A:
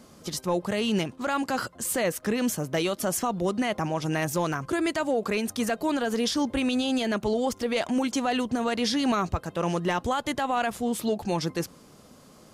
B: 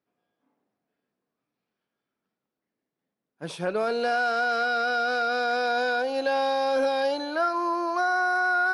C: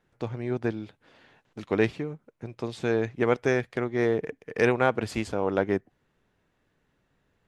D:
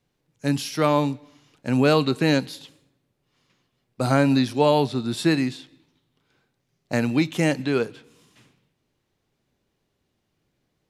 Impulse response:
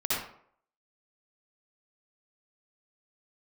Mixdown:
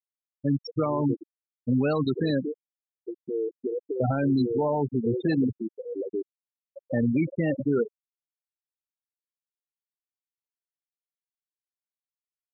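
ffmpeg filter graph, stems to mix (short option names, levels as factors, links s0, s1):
-filter_complex "[0:a]aemphasis=mode=reproduction:type=75kf,bandreject=f=118.5:t=h:w=4,bandreject=f=237:t=h:w=4,bandreject=f=355.5:t=h:w=4,bandreject=f=474:t=h:w=4,bandreject=f=592.5:t=h:w=4,bandreject=f=711:t=h:w=4,bandreject=f=829.5:t=h:w=4,bandreject=f=948:t=h:w=4,bandreject=f=1066.5:t=h:w=4,bandreject=f=1185:t=h:w=4,bandreject=f=1303.5:t=h:w=4,bandreject=f=1422:t=h:w=4,bandreject=f=1540.5:t=h:w=4,bandreject=f=1659:t=h:w=4,bandreject=f=1777.5:t=h:w=4,bandreject=f=1896:t=h:w=4,bandreject=f=2014.5:t=h:w=4,bandreject=f=2133:t=h:w=4,bandreject=f=2251.5:t=h:w=4,bandreject=f=2370:t=h:w=4,bandreject=f=2488.5:t=h:w=4,bandreject=f=2607:t=h:w=4,bandreject=f=2725.5:t=h:w=4,bandreject=f=2844:t=h:w=4,bandreject=f=2962.5:t=h:w=4,bandreject=f=3081:t=h:w=4,bandreject=f=3199.5:t=h:w=4,bandreject=f=3318:t=h:w=4,bandreject=f=3436.5:t=h:w=4,bandreject=f=3555:t=h:w=4,bandreject=f=3673.5:t=h:w=4,adelay=2500,volume=0.224[s0];[1:a]adynamicequalizer=threshold=0.01:dfrequency=1900:dqfactor=0.82:tfrequency=1900:tqfactor=0.82:attack=5:release=100:ratio=0.375:range=4:mode=cutabove:tftype=bell,adelay=500,volume=0.316[s1];[2:a]adynamicequalizer=threshold=0.0178:dfrequency=380:dqfactor=0.85:tfrequency=380:tqfactor=0.85:attack=5:release=100:ratio=0.375:range=2.5:mode=boostabove:tftype=bell,acrusher=bits=7:mix=0:aa=0.5,adelay=450,volume=0.891[s2];[3:a]lowpass=f=7900:t=q:w=3.1,volume=1.19[s3];[s0][s1][s2]amix=inputs=3:normalize=0,acompressor=mode=upward:threshold=0.01:ratio=2.5,alimiter=limit=0.126:level=0:latency=1:release=83,volume=1[s4];[s3][s4]amix=inputs=2:normalize=0,afftfilt=real='re*gte(hypot(re,im),0.251)':imag='im*gte(hypot(re,im),0.251)':win_size=1024:overlap=0.75,alimiter=limit=0.15:level=0:latency=1:release=38"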